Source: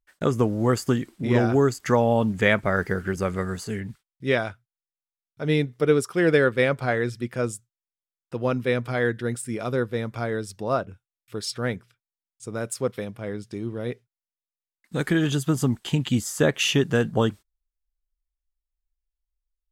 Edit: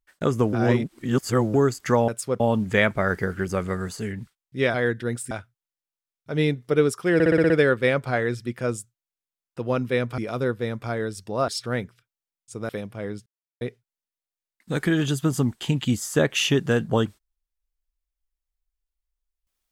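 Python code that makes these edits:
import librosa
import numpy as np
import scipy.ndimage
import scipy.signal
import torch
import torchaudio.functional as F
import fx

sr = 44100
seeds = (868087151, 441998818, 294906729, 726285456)

y = fx.edit(x, sr, fx.reverse_span(start_s=0.53, length_s=1.01),
    fx.stutter(start_s=6.25, slice_s=0.06, count=7),
    fx.move(start_s=8.93, length_s=0.57, to_s=4.42),
    fx.cut(start_s=10.8, length_s=0.6),
    fx.move(start_s=12.61, length_s=0.32, to_s=2.08),
    fx.silence(start_s=13.5, length_s=0.35), tone=tone)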